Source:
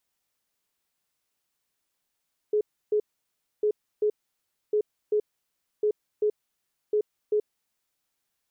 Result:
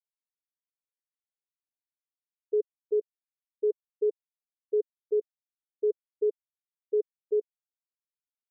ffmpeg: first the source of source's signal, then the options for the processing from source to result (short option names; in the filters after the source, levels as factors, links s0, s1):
-f lavfi -i "aevalsrc='0.1*sin(2*PI*422*t)*clip(min(mod(mod(t,1.1),0.39),0.08-mod(mod(t,1.1),0.39))/0.005,0,1)*lt(mod(t,1.1),0.78)':d=5.5:s=44100"
-af "afftfilt=real='re*gte(hypot(re,im),0.251)':imag='im*gte(hypot(re,im),0.251)':win_size=1024:overlap=0.75"